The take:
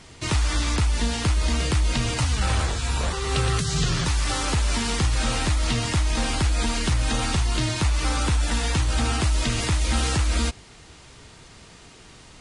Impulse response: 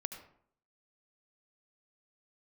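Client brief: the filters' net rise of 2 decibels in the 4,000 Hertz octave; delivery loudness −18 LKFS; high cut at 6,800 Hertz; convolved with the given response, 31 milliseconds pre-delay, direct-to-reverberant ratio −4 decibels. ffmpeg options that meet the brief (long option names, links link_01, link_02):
-filter_complex "[0:a]lowpass=6800,equalizer=frequency=4000:width_type=o:gain=3,asplit=2[link_01][link_02];[1:a]atrim=start_sample=2205,adelay=31[link_03];[link_02][link_03]afir=irnorm=-1:irlink=0,volume=5dB[link_04];[link_01][link_04]amix=inputs=2:normalize=0,volume=0.5dB"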